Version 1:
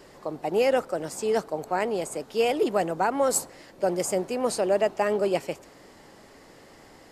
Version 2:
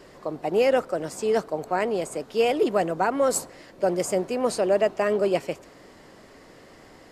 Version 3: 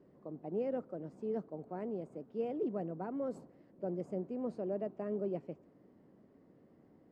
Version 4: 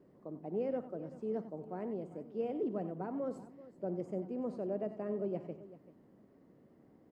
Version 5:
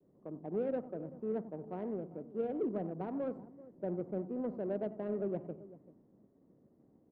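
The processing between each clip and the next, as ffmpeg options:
ffmpeg -i in.wav -af "highshelf=frequency=6000:gain=-5.5,bandreject=frequency=840:width=12,volume=2dB" out.wav
ffmpeg -i in.wav -af "bandpass=frequency=200:width_type=q:width=1.2:csg=0,volume=-7.5dB" out.wav
ffmpeg -i in.wav -af "aecho=1:1:56|92|93|386:0.15|0.141|0.237|0.141" out.wav
ffmpeg -i in.wav -af "adynamicsmooth=sensitivity=3.5:basefreq=1000,agate=range=-33dB:threshold=-59dB:ratio=3:detection=peak,volume=1dB" out.wav

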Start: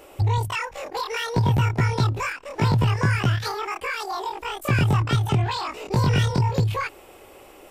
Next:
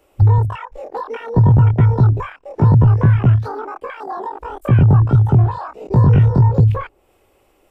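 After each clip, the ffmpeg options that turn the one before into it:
ffmpeg -i in.wav -filter_complex "[0:a]afwtdn=0.0447,lowshelf=frequency=150:gain=9,acrossover=split=100|1100[link_01][link_02][link_03];[link_03]acompressor=threshold=-42dB:ratio=6[link_04];[link_01][link_02][link_04]amix=inputs=3:normalize=0,volume=4.5dB" out.wav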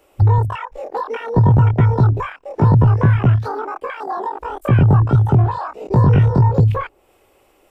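ffmpeg -i in.wav -af "lowshelf=frequency=230:gain=-5.5,volume=3dB" out.wav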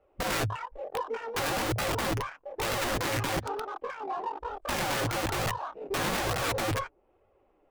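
ffmpeg -i in.wav -af "adynamicsmooth=sensitivity=3:basefreq=1500,aeval=exprs='(mod(5.31*val(0)+1,2)-1)/5.31':channel_layout=same,flanger=delay=1.5:depth=6:regen=-28:speed=1.1:shape=sinusoidal,volume=-6dB" out.wav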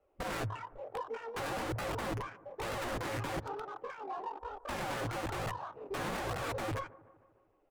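ffmpeg -i in.wav -filter_complex "[0:a]acrossover=split=100|1500[link_01][link_02][link_03];[link_02]aecho=1:1:152|304|456|608|760:0.119|0.0666|0.0373|0.0209|0.0117[link_04];[link_03]asoftclip=type=tanh:threshold=-32dB[link_05];[link_01][link_04][link_05]amix=inputs=3:normalize=0,volume=-6.5dB" out.wav

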